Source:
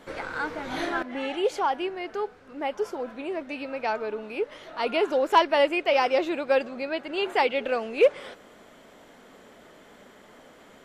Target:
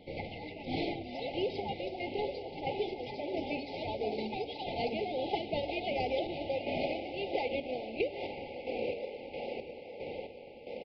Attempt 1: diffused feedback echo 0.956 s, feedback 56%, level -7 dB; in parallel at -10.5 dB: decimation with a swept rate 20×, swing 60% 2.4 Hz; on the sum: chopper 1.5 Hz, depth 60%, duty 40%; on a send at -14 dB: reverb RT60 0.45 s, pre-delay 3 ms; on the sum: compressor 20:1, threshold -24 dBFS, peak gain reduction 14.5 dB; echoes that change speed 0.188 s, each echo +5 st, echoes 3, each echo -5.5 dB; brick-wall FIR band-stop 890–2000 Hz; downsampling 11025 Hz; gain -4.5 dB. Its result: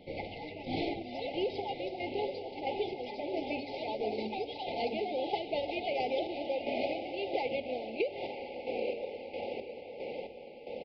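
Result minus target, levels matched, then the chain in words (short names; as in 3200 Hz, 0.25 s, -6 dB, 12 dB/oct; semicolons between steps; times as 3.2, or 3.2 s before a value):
decimation with a swept rate: distortion -18 dB
diffused feedback echo 0.956 s, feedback 56%, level -7 dB; in parallel at -10.5 dB: decimation with a swept rate 41×, swing 60% 2.4 Hz; on the sum: chopper 1.5 Hz, depth 60%, duty 40%; on a send at -14 dB: reverb RT60 0.45 s, pre-delay 3 ms; on the sum: compressor 20:1, threshold -24 dBFS, peak gain reduction 13.5 dB; echoes that change speed 0.188 s, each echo +5 st, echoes 3, each echo -5.5 dB; brick-wall FIR band-stop 890–2000 Hz; downsampling 11025 Hz; gain -4.5 dB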